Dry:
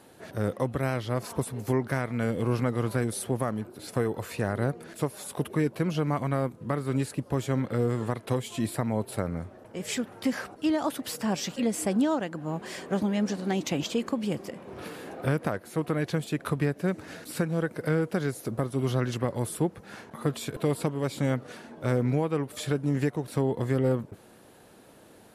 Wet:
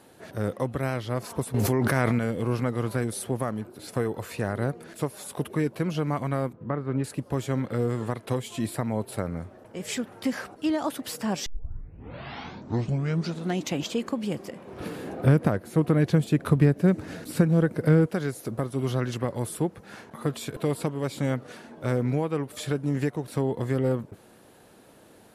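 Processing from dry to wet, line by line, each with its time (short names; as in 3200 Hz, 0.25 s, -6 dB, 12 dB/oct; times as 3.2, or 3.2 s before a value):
1.54–2.19 fast leveller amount 100%
6.53–7.04 LPF 1800 Hz
11.46 tape start 2.19 s
14.8–18.06 low shelf 410 Hz +10 dB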